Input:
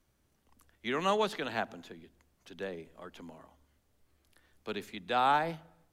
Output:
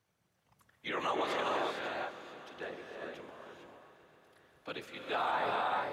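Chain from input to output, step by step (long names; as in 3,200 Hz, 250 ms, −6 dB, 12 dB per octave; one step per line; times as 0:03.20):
parametric band 220 Hz −12 dB 1.2 octaves
random phases in short frames
high-pass filter 120 Hz 12 dB per octave
high-shelf EQ 5,500 Hz −8 dB
reverb whose tail is shaped and stops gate 480 ms rising, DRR 1 dB
brickwall limiter −24 dBFS, peak gain reduction 7.5 dB
echo machine with several playback heads 134 ms, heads first and third, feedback 75%, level −19.5 dB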